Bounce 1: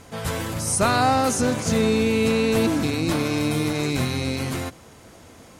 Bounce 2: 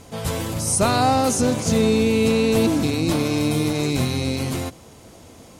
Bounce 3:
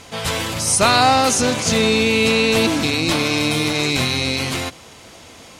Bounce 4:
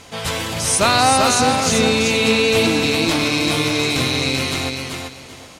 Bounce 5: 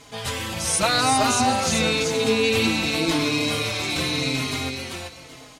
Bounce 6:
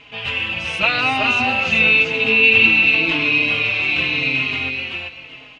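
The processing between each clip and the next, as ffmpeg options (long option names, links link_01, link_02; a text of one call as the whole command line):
ffmpeg -i in.wav -af "equalizer=frequency=1600:width=1.3:gain=-6.5,volume=2.5dB" out.wav
ffmpeg -i in.wav -af "equalizer=frequency=2700:width=0.33:gain=13,volume=-2dB" out.wav
ffmpeg -i in.wav -af "aecho=1:1:388|776|1164:0.631|0.145|0.0334,volume=-1dB" out.wav
ffmpeg -i in.wav -filter_complex "[0:a]asplit=2[link_01][link_02];[link_02]adelay=4.3,afreqshift=-0.91[link_03];[link_01][link_03]amix=inputs=2:normalize=1,volume=-2dB" out.wav
ffmpeg -i in.wav -af "lowpass=frequency=2700:width_type=q:width=10,volume=-2.5dB" out.wav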